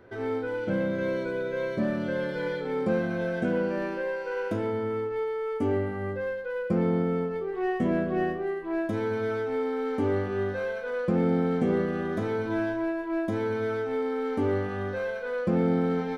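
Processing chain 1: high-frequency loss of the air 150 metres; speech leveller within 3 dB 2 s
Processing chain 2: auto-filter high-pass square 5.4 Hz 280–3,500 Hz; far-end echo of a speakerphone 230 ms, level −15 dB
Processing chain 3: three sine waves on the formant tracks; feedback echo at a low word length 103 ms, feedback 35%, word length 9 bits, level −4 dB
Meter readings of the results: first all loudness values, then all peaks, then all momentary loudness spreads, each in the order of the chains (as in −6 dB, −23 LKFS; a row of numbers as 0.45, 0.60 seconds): −28.5, −28.0, −27.0 LKFS; −14.5, −10.5, −13.5 dBFS; 5, 6, 6 LU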